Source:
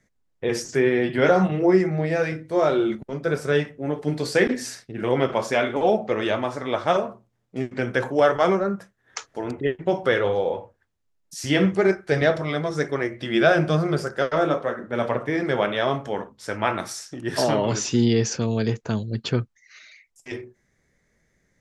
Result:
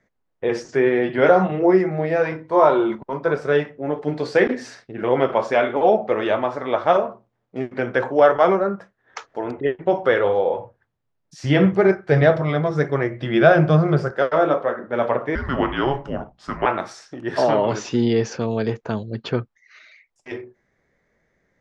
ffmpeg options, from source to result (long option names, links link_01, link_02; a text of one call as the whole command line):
ffmpeg -i in.wav -filter_complex "[0:a]asettb=1/sr,asplit=3[link_01][link_02][link_03];[link_01]atrim=end=2.254[link_04];[link_02]atrim=start=2.25:end=3.33,asetpts=PTS-STARTPTS,afade=type=in:duration=0.004:curve=qsin,afade=type=out:start_time=1.076:duration=0.004:curve=qsin,equalizer=frequency=980:width=4.7:gain=14.5[link_05];[link_03]atrim=start=3.326[link_06];[link_04][link_05]acrossfade=duration=0.004:curve1=hsin:curve2=qsin[link_07];[link_07][link_06]acrossfade=duration=0.004:curve1=qsin:curve2=hsin,asettb=1/sr,asplit=3[link_08][link_09][link_10];[link_08]atrim=end=10.594[link_11];[link_09]atrim=start=10.59:end=14.11,asetpts=PTS-STARTPTS,afade=type=in:duration=0.004:curve=qsin,afade=type=out:start_time=3.516:duration=0.004:curve=qsin,equalizer=frequency=130:width=1.5:gain=12[link_12];[link_10]atrim=start=14.106[link_13];[link_11][link_12]acrossfade=duration=0.004:curve1=hsin:curve2=qsin[link_14];[link_14][link_13]acrossfade=duration=0.004:curve1=qsin:curve2=hsin,asettb=1/sr,asplit=3[link_15][link_16][link_17];[link_15]atrim=end=15.354[link_18];[link_16]atrim=start=15.35:end=16.66,asetpts=PTS-STARTPTS,afade=type=in:duration=0.004:curve=qsin,afade=type=out:start_time=1.306:duration=0.004:curve=qsin,afreqshift=-270[link_19];[link_17]atrim=start=16.656[link_20];[link_18][link_19]acrossfade=duration=0.004:curve1=hsin:curve2=qsin[link_21];[link_21][link_20]acrossfade=duration=0.004:curve1=qsin:curve2=hsin,lowpass=4900,equalizer=frequency=760:width_type=o:width=2.9:gain=9,volume=-4dB" out.wav